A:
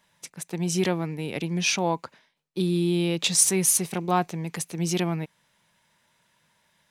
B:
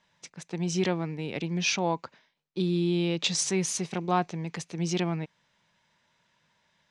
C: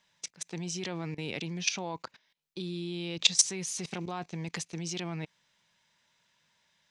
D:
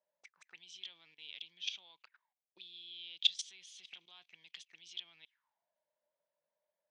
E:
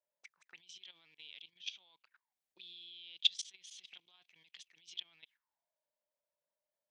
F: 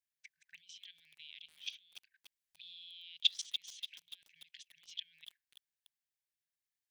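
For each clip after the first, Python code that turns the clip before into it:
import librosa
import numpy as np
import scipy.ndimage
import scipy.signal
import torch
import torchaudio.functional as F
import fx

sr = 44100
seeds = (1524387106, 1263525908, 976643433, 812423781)

y1 = scipy.signal.sosfilt(scipy.signal.butter(4, 6600.0, 'lowpass', fs=sr, output='sos'), x)
y1 = y1 * librosa.db_to_amplitude(-2.5)
y2 = fx.high_shelf(y1, sr, hz=2300.0, db=10.0)
y2 = fx.level_steps(y2, sr, step_db=18)
y3 = fx.auto_wah(y2, sr, base_hz=570.0, top_hz=3300.0, q=9.1, full_db=-34.0, direction='up')
y3 = y3 * librosa.db_to_amplitude(1.5)
y4 = fx.level_steps(y3, sr, step_db=14)
y4 = y4 * librosa.db_to_amplitude(3.0)
y5 = fx.brickwall_bandstop(y4, sr, low_hz=170.0, high_hz=1500.0)
y5 = fx.echo_crushed(y5, sr, ms=290, feedback_pct=55, bits=8, wet_db=-9.0)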